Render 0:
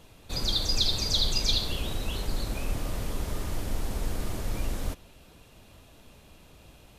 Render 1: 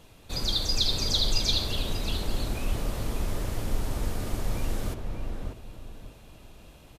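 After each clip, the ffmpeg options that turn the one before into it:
-filter_complex "[0:a]asplit=2[s0][s1];[s1]adelay=591,lowpass=f=1400:p=1,volume=0.708,asplit=2[s2][s3];[s3]adelay=591,lowpass=f=1400:p=1,volume=0.31,asplit=2[s4][s5];[s5]adelay=591,lowpass=f=1400:p=1,volume=0.31,asplit=2[s6][s7];[s7]adelay=591,lowpass=f=1400:p=1,volume=0.31[s8];[s0][s2][s4][s6][s8]amix=inputs=5:normalize=0"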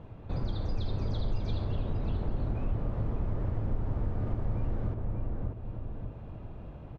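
-af "lowpass=1200,equalizer=f=110:t=o:w=1.3:g=8,acompressor=threshold=0.0126:ratio=2,volume=1.68"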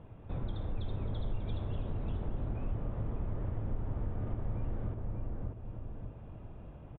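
-af "aresample=8000,aresample=44100,volume=0.596"

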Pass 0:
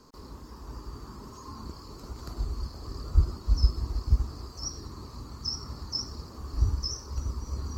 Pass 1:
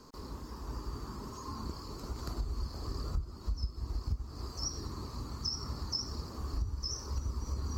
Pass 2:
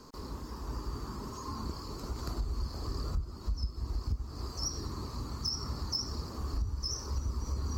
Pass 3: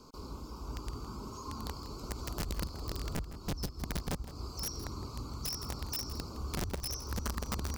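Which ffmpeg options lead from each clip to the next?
-af "acompressor=threshold=0.0251:ratio=8,volume=1.12"
-af "asoftclip=type=tanh:threshold=0.0562,volume=1.33"
-af "asuperstop=centerf=1800:order=20:qfactor=3.1,aeval=exprs='(mod(23.7*val(0)+1,2)-1)/23.7':c=same,aecho=1:1:163:0.2,volume=0.75"

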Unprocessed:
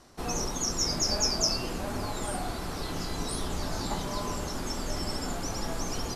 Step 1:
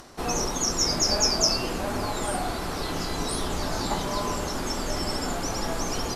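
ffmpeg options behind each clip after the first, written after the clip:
-af "bass=f=250:g=-4,treble=f=4000:g=-2,acompressor=mode=upward:threshold=0.00355:ratio=2.5,volume=2"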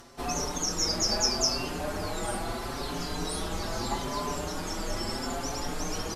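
-filter_complex "[0:a]asplit=2[s0][s1];[s1]adelay=5.5,afreqshift=0.77[s2];[s0][s2]amix=inputs=2:normalize=1,volume=0.891"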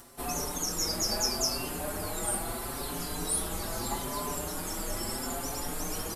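-af "aexciter=amount=4.8:drive=6.4:freq=8100,volume=0.708"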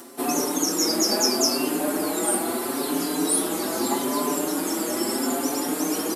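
-af "highpass=f=290:t=q:w=3.6,volume=2.24"

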